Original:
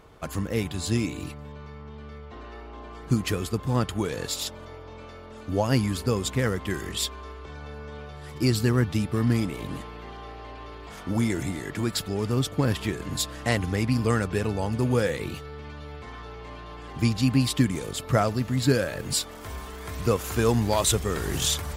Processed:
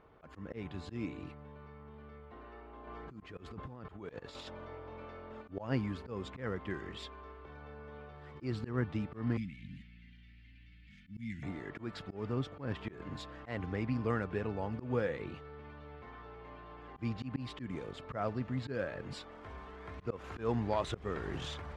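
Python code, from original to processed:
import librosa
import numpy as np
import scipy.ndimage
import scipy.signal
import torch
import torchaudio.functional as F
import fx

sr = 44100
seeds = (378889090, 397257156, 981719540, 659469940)

y = fx.over_compress(x, sr, threshold_db=-33.0, ratio=-1.0, at=(2.87, 5.42))
y = fx.ellip_bandstop(y, sr, low_hz=220.0, high_hz=2100.0, order=3, stop_db=40, at=(9.37, 11.43))
y = scipy.signal.sosfilt(scipy.signal.butter(2, 2200.0, 'lowpass', fs=sr, output='sos'), y)
y = fx.low_shelf(y, sr, hz=150.0, db=-5.5)
y = fx.auto_swell(y, sr, attack_ms=140.0)
y = y * librosa.db_to_amplitude(-8.0)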